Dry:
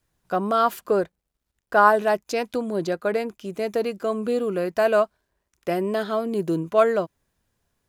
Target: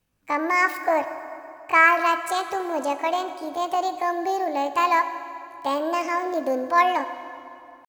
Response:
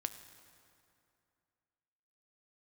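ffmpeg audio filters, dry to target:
-filter_complex "[0:a]asetrate=70004,aresample=44100,atempo=0.629961[a];[1:a]atrim=start_sample=2205,asetrate=39690,aresample=44100[b];[a][b]afir=irnorm=-1:irlink=0"

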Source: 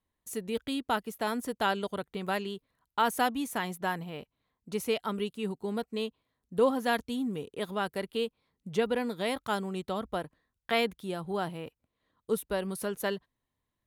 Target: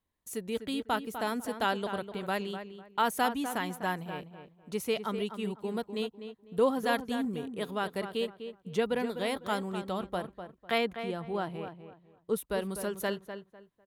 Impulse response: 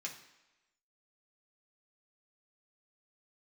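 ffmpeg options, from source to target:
-filter_complex "[0:a]asettb=1/sr,asplit=3[a][b][c];[a]atrim=end=10.784[d];[b]atrim=start=10.78:end=12.36,asetpts=PTS-STARTPTS,afade=t=in:d=0.004:c=qsin,afade=t=out:st=1.576:d=0.004:c=qsin,lowpass=f=3.4k:p=1[e];[c]atrim=start=12.356[f];[d][e]acrossfade=d=0.004:c1=hsin:c2=qsin[g];[g][f]acrossfade=d=0.004:c1=qsin:c2=hsin,asplit=2[h][i];[i]adelay=250,lowpass=f=2.3k:p=1,volume=-9dB,asplit=2[j][k];[k]adelay=250,lowpass=f=2.3k:p=1,volume=0.26,asplit=2[l][m];[m]adelay=250,lowpass=f=2.3k:p=1,volume=0.26[n];[h][j][l][n]amix=inputs=4:normalize=0,volume=-1dB"

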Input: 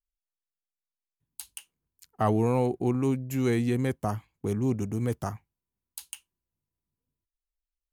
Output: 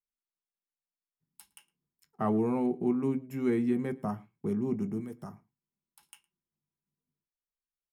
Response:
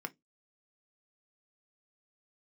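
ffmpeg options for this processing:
-filter_complex "[0:a]lowshelf=f=440:g=7,asettb=1/sr,asplit=3[a][b][c];[a]atrim=end=5.004[d];[b]atrim=start=5:end=6.03,asetpts=PTS-STARTPTS,afade=t=in:d=0.004:c=qsin,afade=t=out:st=1.026:d=0.004:c=qsin,acrossover=split=1300|4200[e][f][g];[e]acompressor=threshold=-30dB:ratio=4[h];[f]acompressor=threshold=-56dB:ratio=4[i];[g]acompressor=threshold=-47dB:ratio=4[j];[h][i][j]amix=inputs=3:normalize=0[k];[c]atrim=start=6.026[l];[d][k]acrossfade=d=0.004:c1=hsin:c2=qsin[m];[m][l]acrossfade=d=0.004:c1=qsin:c2=hsin,asplit=2[n][o];[o]adelay=110.8,volume=-24dB,highshelf=f=4k:g=-2.49[p];[n][p]amix=inputs=2:normalize=0[q];[1:a]atrim=start_sample=2205[r];[q][r]afir=irnorm=-1:irlink=0,volume=-8dB"

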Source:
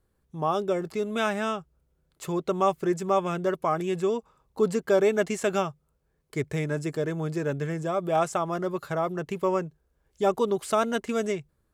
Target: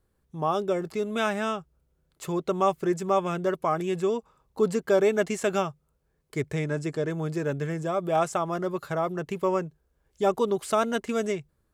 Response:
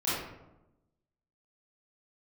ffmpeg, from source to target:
-filter_complex "[0:a]asettb=1/sr,asplit=3[a][b][c];[a]atrim=end=6.534[d];[b]atrim=start=6.53:end=7.1,asetpts=PTS-STARTPTS,afade=t=in:d=0.004:c=qsin,afade=t=out:st=0.566:d=0.004:c=qsin,lowpass=8.9k[e];[c]atrim=start=7.096[f];[d][e]acrossfade=d=0.004:c1=hsin:c2=qsin[g];[g][f]acrossfade=d=0.004:c1=qsin:c2=hsin"

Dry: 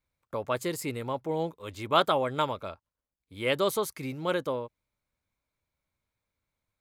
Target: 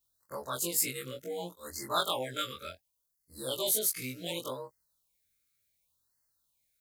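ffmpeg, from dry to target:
-filter_complex "[0:a]afftfilt=real='re':imag='-im':win_size=2048:overlap=0.75,asplit=2[a][b];[b]acompressor=threshold=-37dB:ratio=10,volume=-0.5dB[c];[a][c]amix=inputs=2:normalize=0,crystalizer=i=8:c=0,afftfilt=real='re*(1-between(b*sr/1024,780*pow(3000/780,0.5+0.5*sin(2*PI*0.68*pts/sr))/1.41,780*pow(3000/780,0.5+0.5*sin(2*PI*0.68*pts/sr))*1.41))':imag='im*(1-between(b*sr/1024,780*pow(3000/780,0.5+0.5*sin(2*PI*0.68*pts/sr))/1.41,780*pow(3000/780,0.5+0.5*sin(2*PI*0.68*pts/sr))*1.41))':win_size=1024:overlap=0.75,volume=-8.5dB"

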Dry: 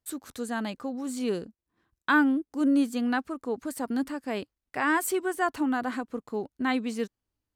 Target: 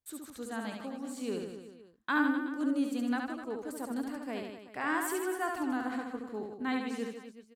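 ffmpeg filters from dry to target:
-af "aecho=1:1:70|154|254.8|375.8|520.9:0.631|0.398|0.251|0.158|0.1,volume=-8dB"

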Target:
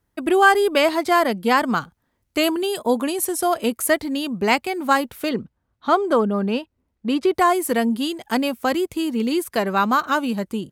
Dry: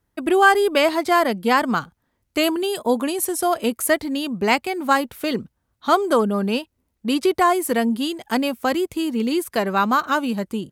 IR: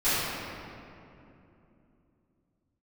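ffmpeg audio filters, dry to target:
-filter_complex "[0:a]asettb=1/sr,asplit=3[a][b][c];[a]atrim=end=5.294[d];[b]atrim=start=5.29:end=7.33,asetpts=PTS-STARTPTS,afade=t=in:d=0.004:c=qsin,afade=t=out:st=2.036:d=0.004:c=qsin,lowpass=f=2.5k:p=1[e];[c]atrim=start=7.326[f];[d][e]acrossfade=d=0.004:c1=hsin:c2=qsin[g];[g][f]acrossfade=d=0.004:c1=qsin:c2=hsin"

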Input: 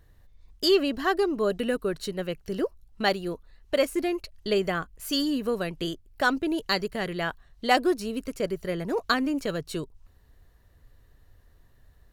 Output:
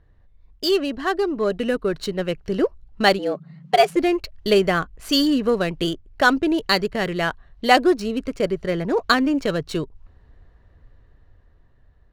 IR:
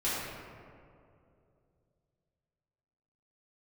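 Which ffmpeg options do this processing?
-filter_complex "[0:a]dynaudnorm=f=400:g=9:m=8dB,asplit=3[a][b][c];[a]afade=t=out:st=3.18:d=0.02[d];[b]afreqshift=140,afade=t=in:st=3.18:d=0.02,afade=t=out:st=3.95:d=0.02[e];[c]afade=t=in:st=3.95:d=0.02[f];[d][e][f]amix=inputs=3:normalize=0,adynamicsmooth=sensitivity=6.5:basefreq=2.9k,volume=1dB"

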